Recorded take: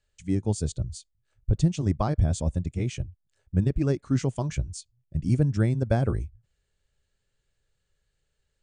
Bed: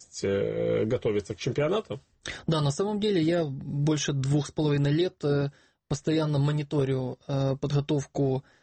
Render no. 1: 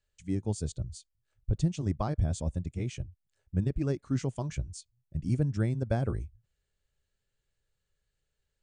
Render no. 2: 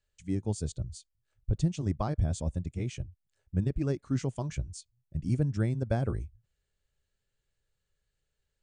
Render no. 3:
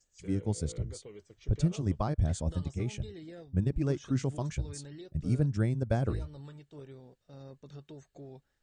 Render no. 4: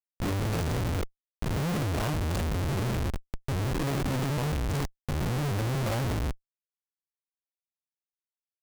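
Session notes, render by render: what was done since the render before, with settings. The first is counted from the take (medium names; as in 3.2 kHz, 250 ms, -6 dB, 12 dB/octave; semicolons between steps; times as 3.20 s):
trim -5.5 dB
no audible change
add bed -22 dB
every event in the spectrogram widened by 120 ms; Schmitt trigger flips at -34 dBFS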